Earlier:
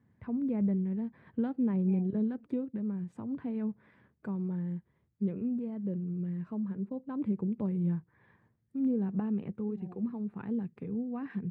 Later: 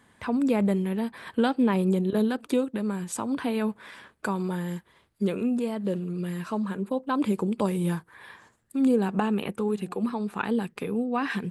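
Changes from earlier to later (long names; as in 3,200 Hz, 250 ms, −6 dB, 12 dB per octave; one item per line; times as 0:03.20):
first voice: remove resonant band-pass 120 Hz, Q 1.2
master: add parametric band 2,000 Hz −7.5 dB 0.67 octaves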